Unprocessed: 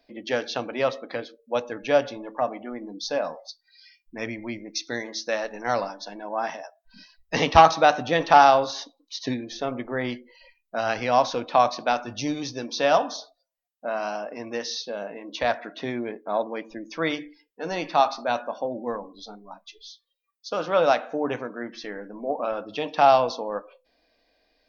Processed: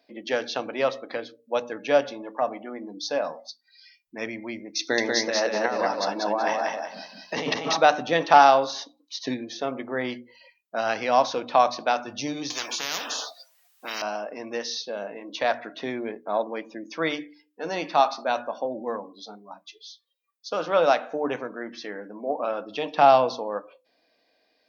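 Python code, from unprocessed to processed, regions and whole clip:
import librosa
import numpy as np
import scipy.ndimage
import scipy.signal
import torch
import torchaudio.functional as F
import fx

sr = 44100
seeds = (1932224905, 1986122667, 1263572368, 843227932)

y = fx.chain(x, sr, fx.peak_eq(hz=710.0, db=2.5, octaves=2.7),
    fx.over_compress(threshold_db=-28.0, ratio=-1.0),
    fx.echo_feedback(ms=189, feedback_pct=29, wet_db=-3.0), at=(4.79, 7.77))
y = fx.chain(y, sr, fx.highpass(hz=980.0, slope=12),
    fx.spectral_comp(ratio=10.0), at=(12.5, 14.02))
y = fx.chain(y, sr, fx.lowpass(hz=5400.0, slope=12),
    fx.low_shelf(hz=230.0, db=7.5), at=(22.94, 23.34))
y = scipy.signal.sosfilt(scipy.signal.butter(2, 160.0, 'highpass', fs=sr, output='sos'), y)
y = fx.hum_notches(y, sr, base_hz=60, count=5)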